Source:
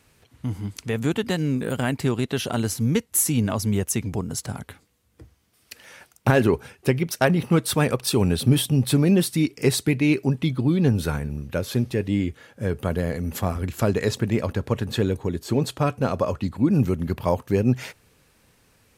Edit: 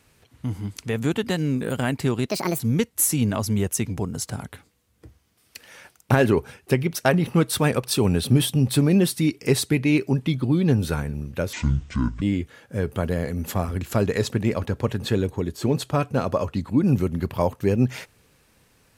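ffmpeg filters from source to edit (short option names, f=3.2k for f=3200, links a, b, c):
-filter_complex "[0:a]asplit=5[a][b][c][d][e];[a]atrim=end=2.294[f];[b]atrim=start=2.29:end=2.76,asetpts=PTS-STARTPTS,asetrate=67032,aresample=44100,atrim=end_sample=13636,asetpts=PTS-STARTPTS[g];[c]atrim=start=2.756:end=11.694[h];[d]atrim=start=11.69:end=12.09,asetpts=PTS-STARTPTS,asetrate=25578,aresample=44100[i];[e]atrim=start=12.086[j];[f][g]acrossfade=d=0.004:c1=hsin:c2=hsin[k];[k][h]acrossfade=d=0.004:c1=hsin:c2=hsin[l];[l][i]acrossfade=d=0.004:c1=hsin:c2=hsin[m];[m][j]acrossfade=d=0.004:c1=hsin:c2=hsin"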